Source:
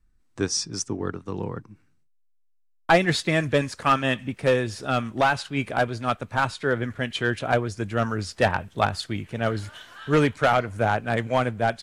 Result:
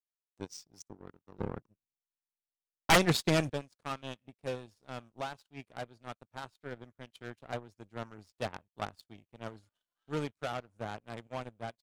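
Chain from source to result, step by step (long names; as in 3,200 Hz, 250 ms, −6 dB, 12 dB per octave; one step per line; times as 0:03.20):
parametric band 1,800 Hz −8.5 dB 0.79 octaves
power curve on the samples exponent 2
0:01.39–0:03.50: sine wavefolder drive 14 dB, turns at −7.5 dBFS
level −8.5 dB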